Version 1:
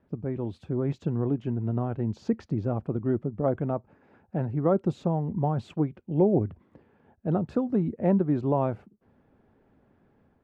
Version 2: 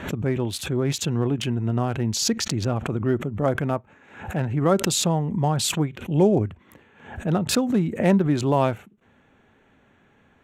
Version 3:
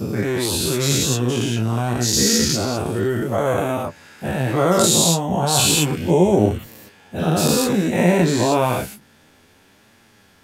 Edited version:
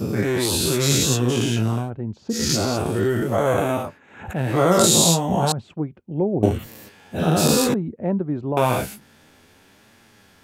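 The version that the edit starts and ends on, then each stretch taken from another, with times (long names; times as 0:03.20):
3
0:01.79–0:02.41: punch in from 1, crossfade 0.24 s
0:03.88–0:04.45: punch in from 2, crossfade 0.24 s
0:05.52–0:06.43: punch in from 1
0:07.74–0:08.57: punch in from 1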